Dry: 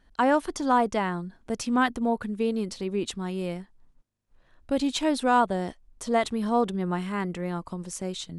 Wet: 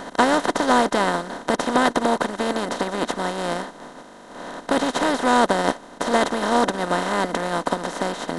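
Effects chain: spectral levelling over time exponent 0.2; upward expansion 2.5:1, over -26 dBFS; trim +1.5 dB

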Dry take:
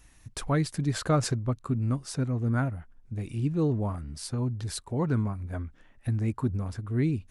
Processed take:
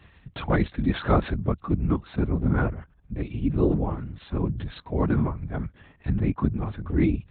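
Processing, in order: LPC vocoder at 8 kHz whisper; high-pass 48 Hz; trim +5 dB

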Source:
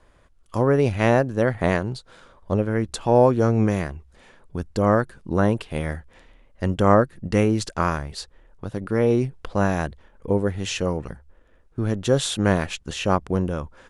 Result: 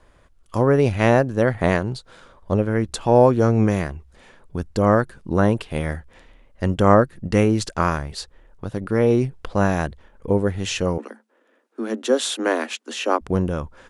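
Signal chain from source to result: 10.98–13.21 s: Chebyshev high-pass 220 Hz, order 10; trim +2 dB

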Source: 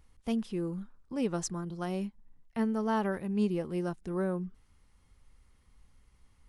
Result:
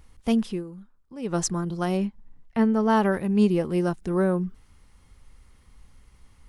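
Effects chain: 0.48–1.38 s: dip -13.5 dB, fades 0.16 s; 1.97–2.90 s: low-pass 3.7 kHz 6 dB/octave; trim +9 dB

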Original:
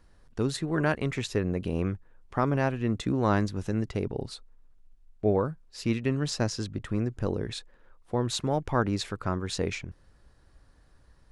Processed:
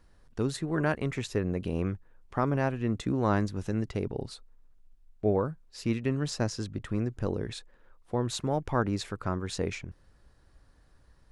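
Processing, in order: dynamic bell 3.7 kHz, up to -3 dB, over -43 dBFS, Q 0.84; trim -1.5 dB

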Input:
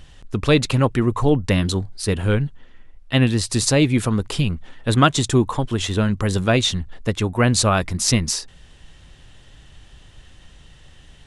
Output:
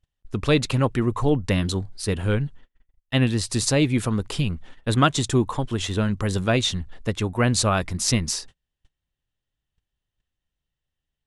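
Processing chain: gate -36 dBFS, range -34 dB; trim -3.5 dB

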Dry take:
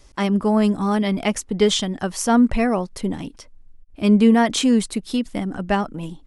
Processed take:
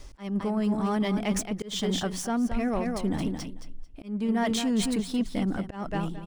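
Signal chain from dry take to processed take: median filter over 3 samples; hum notches 60/120/180 Hz; feedback delay 221 ms, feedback 18%, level -10 dB; random-step tremolo; reverse; compression 6:1, threshold -27 dBFS, peak gain reduction 15.5 dB; reverse; bass shelf 140 Hz +5 dB; in parallel at -5 dB: saturation -32.5 dBFS, distortion -8 dB; on the sum: slow attack 222 ms

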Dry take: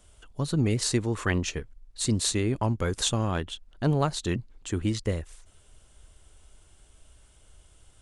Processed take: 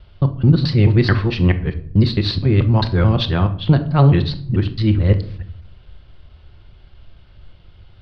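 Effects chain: time reversed locally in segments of 217 ms; elliptic low-pass 4.6 kHz, stop band 40 dB; peaking EQ 98 Hz +10 dB 1.6 oct; simulated room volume 850 m³, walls furnished, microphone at 0.91 m; trim +7.5 dB

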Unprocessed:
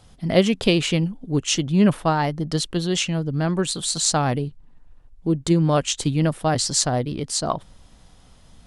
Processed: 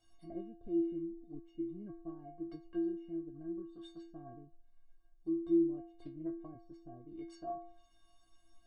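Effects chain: low-pass that closes with the level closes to 310 Hz, closed at -18.5 dBFS; inharmonic resonator 330 Hz, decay 0.6 s, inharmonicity 0.03; 5.90–6.37 s: loudspeaker Doppler distortion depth 0.14 ms; trim +2.5 dB

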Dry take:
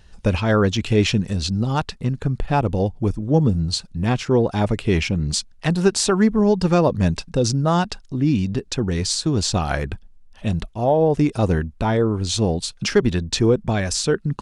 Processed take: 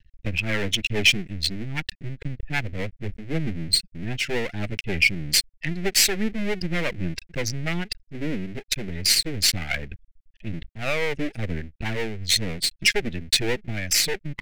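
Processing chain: spectral contrast enhancement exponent 1.9; half-wave rectifier; resonant high shelf 1.5 kHz +12 dB, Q 3; trim -4 dB

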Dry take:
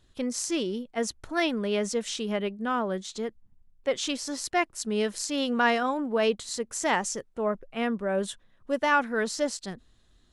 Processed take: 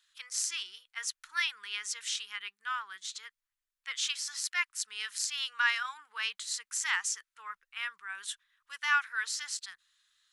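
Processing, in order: inverse Chebyshev high-pass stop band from 650 Hz, stop band 40 dB

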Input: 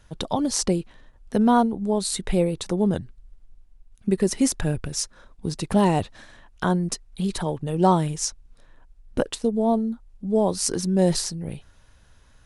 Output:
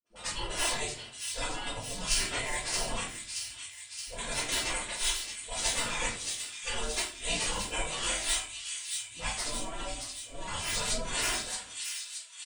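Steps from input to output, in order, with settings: frequency-domain pitch shifter -2.5 st; in parallel at -5 dB: saturation -21.5 dBFS, distortion -10 dB; on the sum: gate -45 dBFS, range -29 dB; comb 3 ms, depth 88%; phase dispersion highs, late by 57 ms, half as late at 360 Hz; compressor with a negative ratio -23 dBFS, ratio -1; bass shelf 420 Hz -10.5 dB; spectral gate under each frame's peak -20 dB weak; on a send: feedback echo behind a high-pass 624 ms, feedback 65%, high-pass 3 kHz, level -4.5 dB; on the sum: simulated room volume 32 m³, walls mixed, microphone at 1.8 m

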